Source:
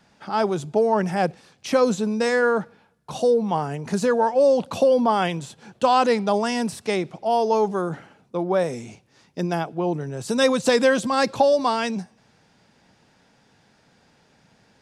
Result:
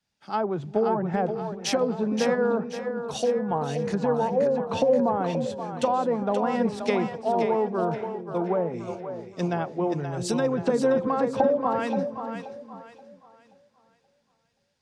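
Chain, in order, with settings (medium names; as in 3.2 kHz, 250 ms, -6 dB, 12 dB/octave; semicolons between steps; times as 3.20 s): low-pass that closes with the level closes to 980 Hz, closed at -16.5 dBFS; compression, threshold -21 dBFS, peak gain reduction 7.5 dB; on a send: two-band feedback delay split 400 Hz, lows 386 ms, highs 528 ms, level -5 dB; on the sum: three bands expanded up and down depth 70%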